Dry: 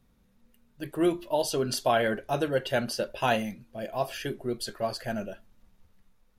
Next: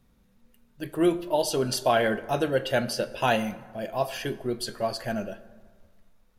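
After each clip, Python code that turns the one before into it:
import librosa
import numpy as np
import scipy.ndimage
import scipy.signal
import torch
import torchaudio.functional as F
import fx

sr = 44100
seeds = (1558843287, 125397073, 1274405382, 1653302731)

y = fx.rev_plate(x, sr, seeds[0], rt60_s=1.6, hf_ratio=0.5, predelay_ms=0, drr_db=14.0)
y = y * librosa.db_to_amplitude(2.0)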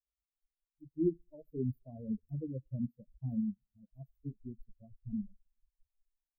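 y = fx.bin_expand(x, sr, power=3.0)
y = scipy.signal.sosfilt(scipy.signal.cheby2(4, 70, [1200.0, 9800.0], 'bandstop', fs=sr, output='sos'), y)
y = y * librosa.db_to_amplitude(1.5)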